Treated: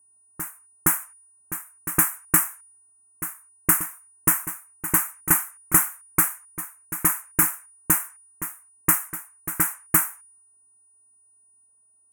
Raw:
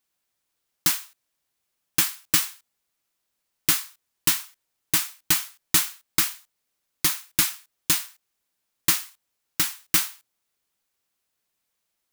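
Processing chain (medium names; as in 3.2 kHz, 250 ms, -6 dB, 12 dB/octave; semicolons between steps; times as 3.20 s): level-controlled noise filter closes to 1 kHz, open at -23 dBFS; whistle 9.6 kHz -55 dBFS; Chebyshev band-stop 1.5–9.5 kHz, order 2; reverse echo 467 ms -12 dB; tape noise reduction on one side only decoder only; trim +6.5 dB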